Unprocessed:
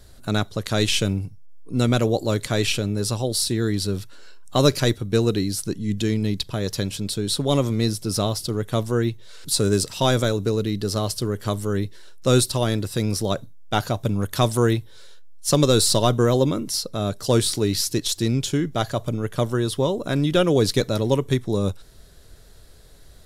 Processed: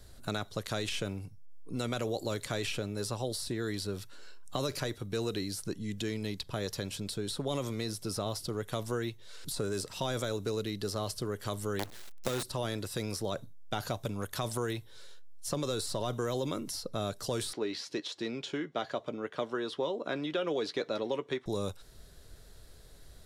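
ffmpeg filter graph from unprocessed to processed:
-filter_complex "[0:a]asettb=1/sr,asplit=3[s0][s1][s2];[s0]atrim=end=11.794[s3];[s1]atrim=start=11.79:end=12.43,asetpts=PTS-STARTPTS,afade=t=in:d=0.004:c=qsin,afade=t=out:st=0.636:d=0.004:c=qsin,bandreject=f=60:t=h:w=6,bandreject=f=120:t=h:w=6,bandreject=f=180:t=h:w=6,bandreject=f=240:t=h:w=6,acrusher=bits=4:dc=4:mix=0:aa=0.000001[s4];[s2]atrim=start=12.426[s5];[s3][s4]acrossfade=d=0.004:c1=hsin:c2=qsin[s6];[s6][s5]acrossfade=d=0.004:c1=qsin:c2=hsin,asettb=1/sr,asplit=3[s7][s8][s9];[s7]atrim=end=17.534[s10];[s8]atrim=start=17.53:end=21.46,asetpts=PTS-STARTPTS,afade=t=in:d=0.004:c=qsin,afade=t=out:st=3.926:d=0.004:c=qsin,highpass=330,lowpass=3300,asplit=2[s11][s12];[s12]adelay=13,volume=0.224[s13];[s11][s13]amix=inputs=2:normalize=0,atrim=end_sample=173313[s14];[s9]atrim=start=21.456[s15];[s10][s14]acrossfade=d=0.004:c1=hsin:c2=qsin[s16];[s16][s15]acrossfade=d=0.004:c1=qsin:c2=hsin,alimiter=limit=0.237:level=0:latency=1:release=27,acrossover=split=430|2000[s17][s18][s19];[s17]acompressor=threshold=0.0251:ratio=4[s20];[s18]acompressor=threshold=0.0398:ratio=4[s21];[s19]acompressor=threshold=0.02:ratio=4[s22];[s20][s21][s22]amix=inputs=3:normalize=0,volume=0.562"

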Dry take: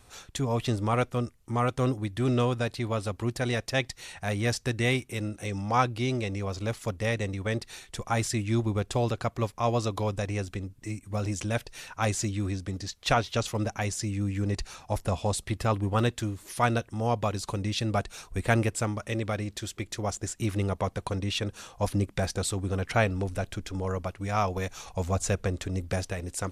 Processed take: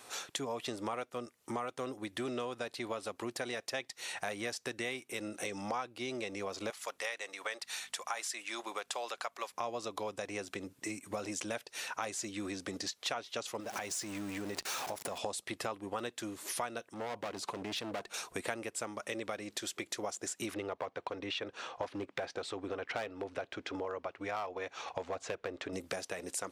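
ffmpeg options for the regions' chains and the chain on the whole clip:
-filter_complex "[0:a]asettb=1/sr,asplit=3[s0][s1][s2];[s0]atrim=end=6.704[s3];[s1]atrim=start=6.7:end=9.54,asetpts=PTS-STARTPTS,afade=t=in:d=0.004:c=qsin,afade=t=out:st=2.836:d=0.004:c=qsin,highpass=800,aeval=exprs='val(0)+0.000794*(sin(2*PI*50*n/s)+sin(2*PI*2*50*n/s)/2+sin(2*PI*3*50*n/s)/3+sin(2*PI*4*50*n/s)/4+sin(2*PI*5*50*n/s)/5)':c=same[s4];[s2]atrim=start=9.536[s5];[s3][s4]acrossfade=d=0.004:c1=hsin:c2=qsin[s6];[s6][s5]acrossfade=d=0.004:c1=qsin:c2=hsin,asettb=1/sr,asplit=3[s7][s8][s9];[s7]atrim=end=13.604[s10];[s8]atrim=start=13.6:end=15.18,asetpts=PTS-STARTPTS,afade=t=in:d=0.004:c=qsin,afade=t=out:st=1.576:d=0.004:c=qsin,aeval=exprs='val(0)+0.5*0.0178*sgn(val(0))':c=same,acompressor=threshold=0.0251:ratio=5:attack=3.2:release=140:knee=1:detection=peak[s11];[s9]atrim=start=15.176[s12];[s10][s11]acrossfade=d=0.004:c1=hsin:c2=qsin[s13];[s13][s12]acrossfade=d=0.004:c1=qsin:c2=hsin,asettb=1/sr,asplit=3[s14][s15][s16];[s14]atrim=end=16.944[s17];[s15]atrim=start=16.94:end=18.14,asetpts=PTS-STARTPTS,afade=t=in:d=0.004:c=qsin,afade=t=out:st=1.196:d=0.004:c=qsin,highshelf=f=3700:g=-10,asoftclip=type=hard:threshold=0.0266[s18];[s16]atrim=start=18.136[s19];[s17][s18]acrossfade=d=0.004:c1=hsin:c2=qsin[s20];[s20][s19]acrossfade=d=0.004:c1=qsin:c2=hsin,asettb=1/sr,asplit=3[s21][s22][s23];[s21]atrim=end=20.544[s24];[s22]atrim=start=20.54:end=25.73,asetpts=PTS-STARTPTS,afade=t=in:d=0.004:c=qsin,afade=t=out:st=5.186:d=0.004:c=qsin,lowpass=3300,volume=11.2,asoftclip=hard,volume=0.0891,equalizer=f=190:w=6.2:g=-11[s25];[s23]atrim=start=25.726[s26];[s24][s25]acrossfade=d=0.004:c1=hsin:c2=qsin[s27];[s27][s26]acrossfade=d=0.004:c1=qsin:c2=hsin,highpass=350,acompressor=threshold=0.00794:ratio=6,volume=2"

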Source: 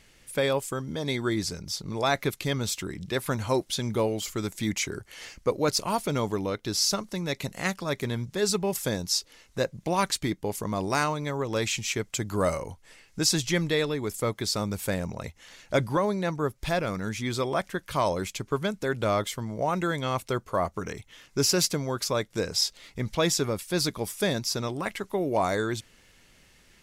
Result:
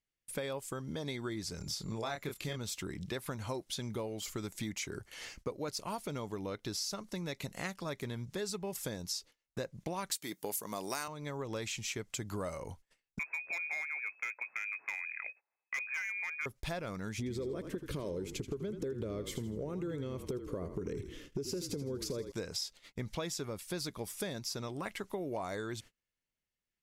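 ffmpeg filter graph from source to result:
-filter_complex "[0:a]asettb=1/sr,asplit=3[s0][s1][s2];[s0]atrim=end=1.584[s3];[s1]atrim=start=1.58:end=2.57,asetpts=PTS-STARTPTS,afade=t=in:d=0.004:c=qsin,afade=t=out:st=0.986:d=0.004:c=qsin,acompressor=mode=upward:threshold=0.0178:ratio=2.5:attack=3.2:release=140:knee=2.83:detection=peak,aeval=exprs='val(0)+0.00158*sin(2*PI*7200*n/s)':c=same,asplit=2[s4][s5];[s5]adelay=27,volume=0.596[s6];[s4][s6]amix=inputs=2:normalize=0,atrim=end_sample=43659[s7];[s2]atrim=start=2.566[s8];[s3][s7]acrossfade=d=0.004:c1=hsin:c2=qsin[s9];[s9][s8]acrossfade=d=0.004:c1=qsin:c2=hsin,asettb=1/sr,asplit=3[s10][s11][s12];[s10]atrim=end=10.114[s13];[s11]atrim=start=10.11:end=11.08,asetpts=PTS-STARTPTS,afade=t=in:d=0.004:c=qsin,afade=t=out:st=0.966:d=0.004:c=qsin,highpass=120,aemphasis=mode=production:type=bsi,acontrast=22[s14];[s12]atrim=start=11.076[s15];[s13][s14]acrossfade=d=0.004:c1=hsin:c2=qsin[s16];[s16][s15]acrossfade=d=0.004:c1=qsin:c2=hsin,asettb=1/sr,asplit=3[s17][s18][s19];[s17]atrim=end=13.194[s20];[s18]atrim=start=13.19:end=16.46,asetpts=PTS-STARTPTS,afade=t=in:d=0.004:c=qsin,afade=t=out:st=3.266:d=0.004:c=qsin,lowpass=f=2200:t=q:w=0.5098,lowpass=f=2200:t=q:w=0.6013,lowpass=f=2200:t=q:w=0.9,lowpass=f=2200:t=q:w=2.563,afreqshift=-2600,highpass=f=970:p=1,asoftclip=type=hard:threshold=0.0891[s21];[s19]atrim=start=16.456[s22];[s20][s21]acrossfade=d=0.004:c1=hsin:c2=qsin[s23];[s23][s22]acrossfade=d=0.004:c1=qsin:c2=hsin,asettb=1/sr,asplit=3[s24][s25][s26];[s24]atrim=end=17.184[s27];[s25]atrim=start=17.18:end=22.32,asetpts=PTS-STARTPTS,afade=t=in:d=0.004:c=qsin,afade=t=out:st=5.136:d=0.004:c=qsin,lowshelf=f=580:t=q:w=3:g=9.5,acompressor=threshold=0.0562:ratio=3:attack=3.2:release=140:knee=1:detection=peak,asplit=5[s28][s29][s30][s31][s32];[s29]adelay=81,afreqshift=-38,volume=0.299[s33];[s30]adelay=162,afreqshift=-76,volume=0.126[s34];[s31]adelay=243,afreqshift=-114,volume=0.0525[s35];[s32]adelay=324,afreqshift=-152,volume=0.0221[s36];[s28][s33][s34][s35][s36]amix=inputs=5:normalize=0,atrim=end_sample=226674[s37];[s26]atrim=start=22.316[s38];[s27][s37]acrossfade=d=0.004:c1=hsin:c2=qsin[s39];[s39][s38]acrossfade=d=0.004:c1=qsin:c2=hsin,acompressor=threshold=0.0251:ratio=6,agate=range=0.0251:threshold=0.00398:ratio=16:detection=peak,volume=0.668"

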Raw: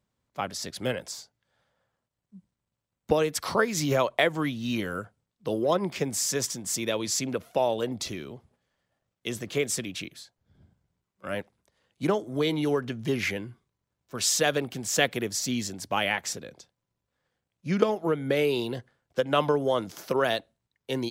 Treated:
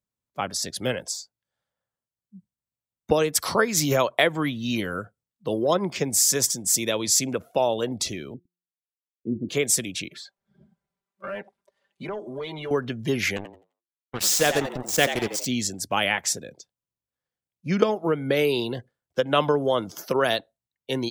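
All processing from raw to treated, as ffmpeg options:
-filter_complex "[0:a]asettb=1/sr,asplit=3[s0][s1][s2];[s0]atrim=end=8.344[s3];[s1]atrim=start=8.34:end=9.49,asetpts=PTS-STARTPTS,afade=t=in:d=0.004:c=qsin,afade=t=out:st=1.146:d=0.004:c=qsin,aeval=exprs='sgn(val(0))*max(abs(val(0))-0.00158,0)':c=same,lowpass=f=270:t=q:w=3,bandreject=f=176.9:t=h:w=4,bandreject=f=353.8:t=h:w=4[s4];[s2]atrim=start=9.486[s5];[s3][s4]acrossfade=d=0.004:c1=hsin:c2=qsin[s6];[s6][s5]acrossfade=d=0.004:c1=qsin:c2=hsin,asettb=1/sr,asplit=3[s7][s8][s9];[s7]atrim=end=10.104[s10];[s8]atrim=start=10.1:end=12.71,asetpts=PTS-STARTPTS,afade=t=in:d=0.004:c=qsin,afade=t=out:st=2.606:d=0.004:c=qsin,aecho=1:1:5.1:0.81,atrim=end_sample=115101,acompressor=threshold=0.01:ratio=3:attack=3.2:release=140:knee=1:detection=peak,asplit=2[s11][s12];[s12]highpass=f=720:p=1,volume=7.08,asoftclip=type=tanh:threshold=0.0596[s13];[s11][s13]amix=inputs=2:normalize=0,lowpass=f=1600:p=1,volume=0.501[s14];[s9]atrim=start=12.706[s15];[s10][s14]acrossfade=d=0.004:c1=hsin:c2=qsin[s16];[s16][s15]acrossfade=d=0.004:c1=qsin:c2=hsin,asettb=1/sr,asplit=3[s17][s18][s19];[s17]atrim=end=13.364[s20];[s18]atrim=start=13.36:end=15.46,asetpts=PTS-STARTPTS,afade=t=in:d=0.004:c=qsin,afade=t=out:st=2.096:d=0.004:c=qsin,aemphasis=mode=reproduction:type=cd,acrusher=bits=4:mix=0:aa=0.5,asplit=5[s21][s22][s23][s24][s25];[s22]adelay=86,afreqshift=86,volume=0.335[s26];[s23]adelay=172,afreqshift=172,volume=0.124[s27];[s24]adelay=258,afreqshift=258,volume=0.0457[s28];[s25]adelay=344,afreqshift=344,volume=0.017[s29];[s21][s26][s27][s28][s29]amix=inputs=5:normalize=0,atrim=end_sample=92610[s30];[s19]atrim=start=15.456[s31];[s20][s30]acrossfade=d=0.004:c1=hsin:c2=qsin[s32];[s32][s31]acrossfade=d=0.004:c1=qsin:c2=hsin,afftdn=nr=16:nf=-49,highshelf=f=6800:g=11.5,volume=1.33"

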